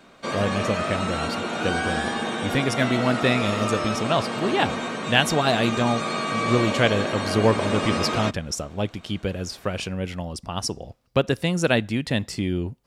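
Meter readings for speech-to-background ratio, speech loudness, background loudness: 2.0 dB, −25.0 LKFS, −27.0 LKFS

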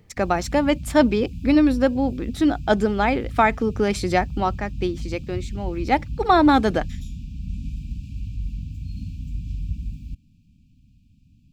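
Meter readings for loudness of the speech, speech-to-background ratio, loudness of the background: −21.0 LKFS, 13.0 dB, −34.0 LKFS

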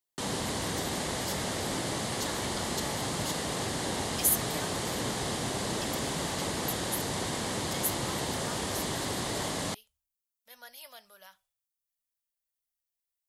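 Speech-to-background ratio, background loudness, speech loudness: −5.0 dB, −32.0 LKFS, −37.0 LKFS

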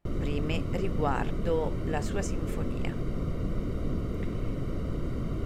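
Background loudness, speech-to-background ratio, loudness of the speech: −34.0 LKFS, −0.5 dB, −34.5 LKFS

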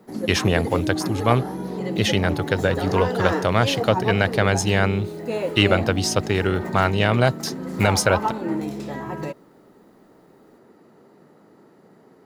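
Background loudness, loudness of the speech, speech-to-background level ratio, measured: −28.0 LKFS, −21.5 LKFS, 6.5 dB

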